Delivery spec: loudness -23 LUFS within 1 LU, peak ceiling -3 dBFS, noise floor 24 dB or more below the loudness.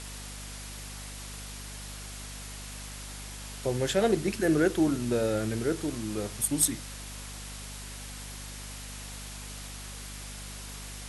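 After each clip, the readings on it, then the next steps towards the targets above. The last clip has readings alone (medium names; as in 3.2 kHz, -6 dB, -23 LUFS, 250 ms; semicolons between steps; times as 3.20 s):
hum 50 Hz; highest harmonic 250 Hz; hum level -41 dBFS; noise floor -42 dBFS; noise floor target -57 dBFS; loudness -32.5 LUFS; peak level -10.0 dBFS; loudness target -23.0 LUFS
-> de-hum 50 Hz, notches 5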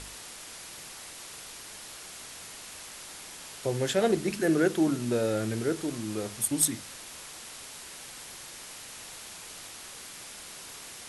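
hum not found; noise floor -45 dBFS; noise floor target -57 dBFS
-> noise reduction 12 dB, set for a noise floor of -45 dBFS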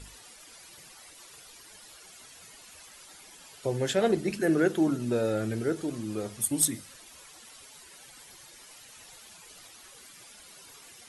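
noise floor -52 dBFS; loudness -28.0 LUFS; peak level -10.0 dBFS; loudness target -23.0 LUFS
-> trim +5 dB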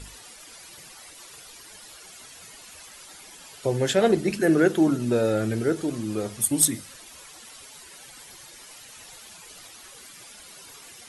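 loudness -23.0 LUFS; peak level -5.0 dBFS; noise floor -47 dBFS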